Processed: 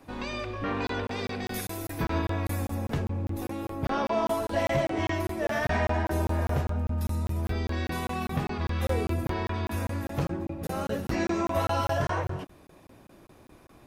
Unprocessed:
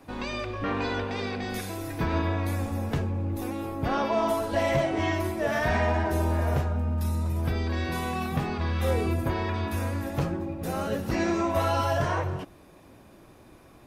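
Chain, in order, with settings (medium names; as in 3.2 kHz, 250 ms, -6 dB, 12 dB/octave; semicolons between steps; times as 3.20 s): 1.03–2.75 s: treble shelf 10 kHz +11 dB; crackling interface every 0.20 s, samples 1024, zero, from 0.87 s; trim -1.5 dB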